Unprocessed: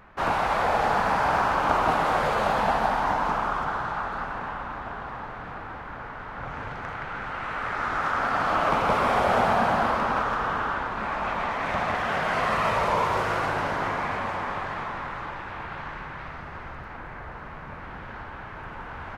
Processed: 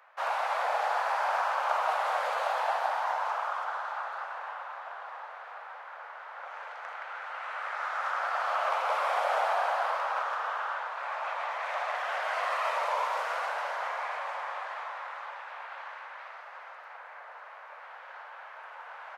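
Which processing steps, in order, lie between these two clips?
steep high-pass 530 Hz 48 dB/oct; gain -5.5 dB

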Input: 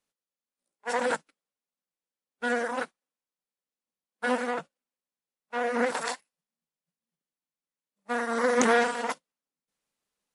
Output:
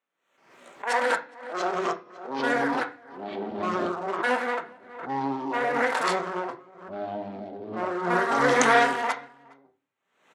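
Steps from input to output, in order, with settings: Wiener smoothing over 9 samples; weighting filter A; outdoor echo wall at 71 m, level -26 dB; echoes that change speed 0.378 s, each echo -5 st, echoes 3; on a send at -4 dB: reverb RT60 0.40 s, pre-delay 3 ms; on the sum: backwards sustainer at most 77 dB/s; gain +3 dB

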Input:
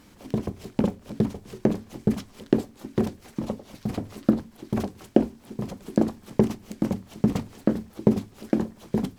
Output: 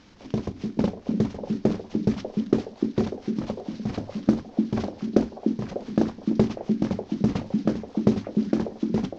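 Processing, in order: CVSD 32 kbps; delay with a stepping band-pass 0.297 s, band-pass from 240 Hz, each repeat 1.4 oct, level -2 dB

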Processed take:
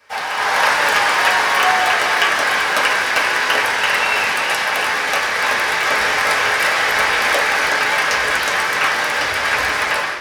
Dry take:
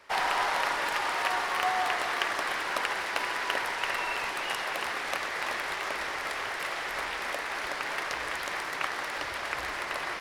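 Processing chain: HPF 64 Hz; high shelf 6400 Hz +9.5 dB; AGC gain up to 15 dB; reverb, pre-delay 3 ms, DRR -6.5 dB; gain -3.5 dB

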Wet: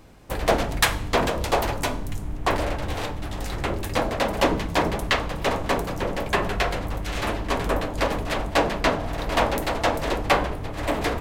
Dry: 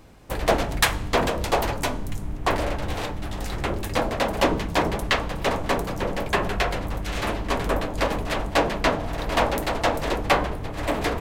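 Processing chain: Schroeder reverb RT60 0.43 s, combs from 31 ms, DRR 16.5 dB

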